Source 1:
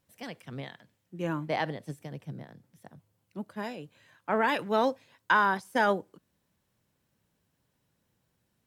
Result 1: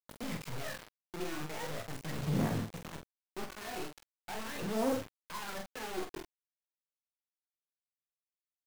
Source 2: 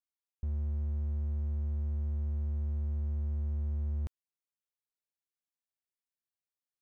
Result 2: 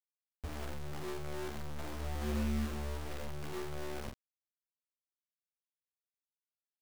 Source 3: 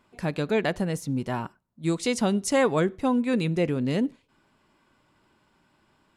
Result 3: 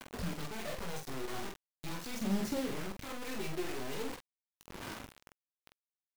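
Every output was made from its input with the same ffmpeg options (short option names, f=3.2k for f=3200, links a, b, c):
-filter_complex "[0:a]lowpass=4.3k,bandreject=f=3.3k:w=5.4,flanger=delay=18:depth=6.4:speed=1.2,areverse,acompressor=threshold=-44dB:ratio=5,areverse,alimiter=level_in=17dB:limit=-24dB:level=0:latency=1:release=17,volume=-17dB,acrossover=split=96|600[a][b][c];[a]acompressor=threshold=-59dB:ratio=4[d];[b]acompressor=threshold=-50dB:ratio=4[e];[c]acompressor=threshold=-58dB:ratio=4[f];[d][e][f]amix=inputs=3:normalize=0,aeval=exprs='(tanh(447*val(0)+0.2)-tanh(0.2))/447':c=same,aphaser=in_gain=1:out_gain=1:delay=2.8:decay=0.78:speed=0.41:type=sinusoidal,bandreject=f=69.8:t=h:w=4,bandreject=f=139.6:t=h:w=4,bandreject=f=209.4:t=h:w=4,bandreject=f=279.2:t=h:w=4,bandreject=f=349:t=h:w=4,acrusher=bits=8:mix=0:aa=0.000001,asplit=2[g][h];[h]aecho=0:1:19|46:0.251|0.531[i];[g][i]amix=inputs=2:normalize=0,volume=12dB"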